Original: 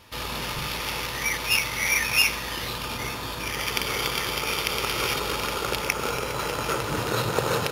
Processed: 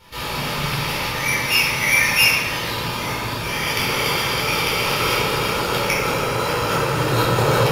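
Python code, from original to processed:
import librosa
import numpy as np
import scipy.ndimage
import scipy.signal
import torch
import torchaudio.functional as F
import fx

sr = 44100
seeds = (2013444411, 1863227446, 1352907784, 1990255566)

y = fx.room_shoebox(x, sr, seeds[0], volume_m3=580.0, walls='mixed', distance_m=4.4)
y = F.gain(torch.from_numpy(y), -3.5).numpy()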